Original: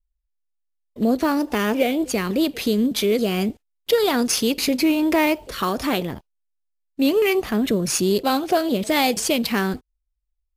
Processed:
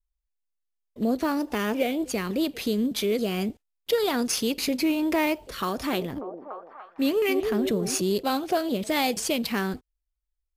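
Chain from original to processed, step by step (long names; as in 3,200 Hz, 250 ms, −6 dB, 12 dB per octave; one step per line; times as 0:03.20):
0:05.63–0:08.01: echo through a band-pass that steps 291 ms, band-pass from 390 Hz, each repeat 0.7 octaves, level −4 dB
level −5.5 dB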